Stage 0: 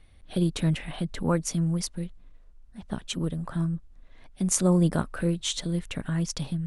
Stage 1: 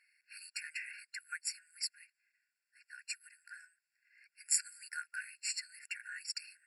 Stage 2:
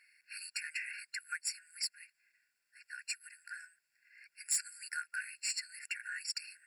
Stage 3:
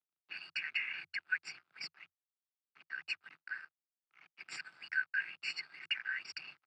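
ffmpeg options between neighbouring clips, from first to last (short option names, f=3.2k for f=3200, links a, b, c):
-af "afftfilt=real='re*eq(mod(floor(b*sr/1024/1400),2),1)':imag='im*eq(mod(floor(b*sr/1024/1400),2),1)':win_size=1024:overlap=0.75,volume=-1dB"
-filter_complex "[0:a]asplit=2[a][b];[b]acompressor=threshold=-46dB:ratio=6,volume=-0.5dB[c];[a][c]amix=inputs=2:normalize=0,asoftclip=type=tanh:threshold=-24dB"
-af "aeval=exprs='sgn(val(0))*max(abs(val(0))-0.00141,0)':c=same,afreqshift=86,highpass=110,equalizer=f=160:t=q:w=4:g=9,equalizer=f=340:t=q:w=4:g=6,equalizer=f=530:t=q:w=4:g=-4,equalizer=f=800:t=q:w=4:g=3,equalizer=f=1.3k:t=q:w=4:g=10,equalizer=f=1.8k:t=q:w=4:g=-7,lowpass=f=3.5k:w=0.5412,lowpass=f=3.5k:w=1.3066,volume=6.5dB"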